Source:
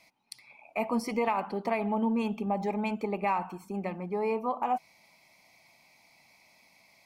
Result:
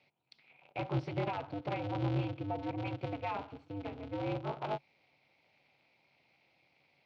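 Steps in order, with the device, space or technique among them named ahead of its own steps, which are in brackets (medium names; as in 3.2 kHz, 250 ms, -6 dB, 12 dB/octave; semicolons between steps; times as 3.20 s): ring modulator pedal into a guitar cabinet (polarity switched at an audio rate 100 Hz; cabinet simulation 96–3800 Hz, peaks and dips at 140 Hz +9 dB, 1.1 kHz -8 dB, 1.8 kHz -8 dB); trim -6.5 dB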